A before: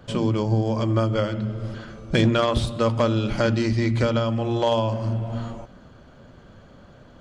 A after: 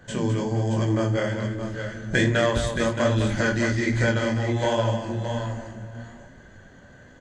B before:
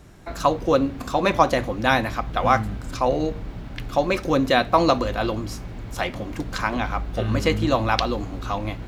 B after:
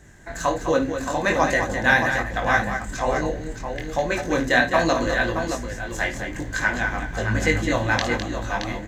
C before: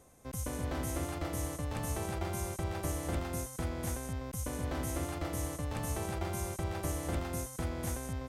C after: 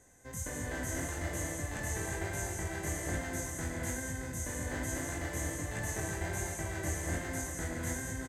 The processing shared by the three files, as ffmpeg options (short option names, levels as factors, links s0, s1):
-af "superequalizer=10b=0.708:11b=3.16:15b=2.82,flanger=delay=18.5:depth=6.7:speed=1.2,aecho=1:1:53|207|622:0.251|0.398|0.422"